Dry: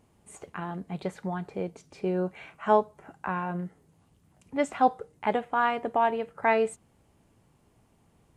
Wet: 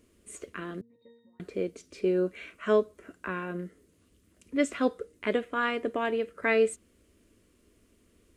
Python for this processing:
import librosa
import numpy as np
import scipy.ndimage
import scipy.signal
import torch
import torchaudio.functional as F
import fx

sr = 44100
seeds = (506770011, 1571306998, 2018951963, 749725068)

y = fx.fixed_phaser(x, sr, hz=340.0, stages=4)
y = fx.octave_resonator(y, sr, note='A#', decay_s=0.62, at=(0.81, 1.4))
y = F.gain(torch.from_numpy(y), 4.0).numpy()